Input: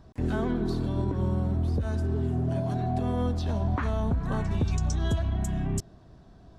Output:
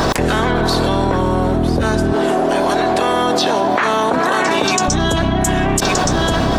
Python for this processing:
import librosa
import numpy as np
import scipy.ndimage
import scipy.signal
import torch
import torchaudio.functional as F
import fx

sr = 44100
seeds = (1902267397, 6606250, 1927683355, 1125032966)

y = fx.spec_clip(x, sr, under_db=20)
y = fx.highpass(y, sr, hz=330.0, slope=12, at=(2.13, 4.88))
y = y + 10.0 ** (-21.0 / 20.0) * np.pad(y, (int(1172 * sr / 1000.0), 0))[:len(y)]
y = fx.env_flatten(y, sr, amount_pct=100)
y = y * 10.0 ** (7.5 / 20.0)